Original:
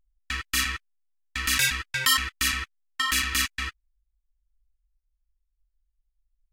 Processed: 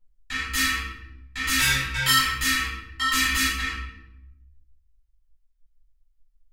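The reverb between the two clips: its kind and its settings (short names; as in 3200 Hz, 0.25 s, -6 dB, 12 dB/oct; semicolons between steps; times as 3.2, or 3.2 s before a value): shoebox room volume 270 m³, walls mixed, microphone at 4.3 m; gain -9 dB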